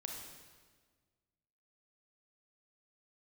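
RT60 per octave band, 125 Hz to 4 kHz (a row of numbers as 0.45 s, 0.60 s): 1.9 s, 1.8 s, 1.6 s, 1.4 s, 1.4 s, 1.3 s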